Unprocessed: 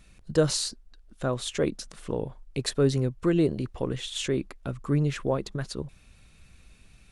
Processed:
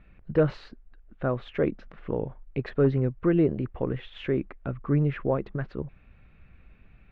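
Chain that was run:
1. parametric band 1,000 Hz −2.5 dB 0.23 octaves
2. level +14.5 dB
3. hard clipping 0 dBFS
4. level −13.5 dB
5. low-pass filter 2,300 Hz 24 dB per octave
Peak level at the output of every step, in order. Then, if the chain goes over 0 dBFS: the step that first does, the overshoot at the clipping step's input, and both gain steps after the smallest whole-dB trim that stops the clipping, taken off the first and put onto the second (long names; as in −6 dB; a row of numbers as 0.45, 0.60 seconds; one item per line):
−9.0, +5.5, 0.0, −13.5, −13.0 dBFS
step 2, 5.5 dB
step 2 +8.5 dB, step 4 −7.5 dB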